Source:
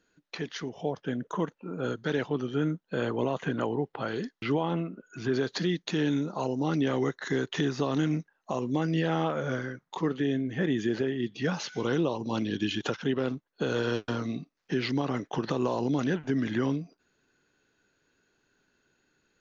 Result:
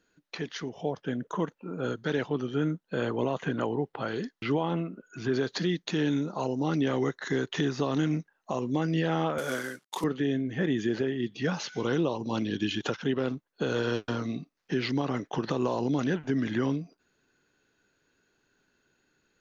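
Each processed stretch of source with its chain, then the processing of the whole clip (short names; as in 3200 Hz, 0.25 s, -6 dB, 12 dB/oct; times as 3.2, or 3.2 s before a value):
9.38–10.04 CVSD 64 kbps + HPF 230 Hz + high shelf 2500 Hz +9.5 dB
whole clip: dry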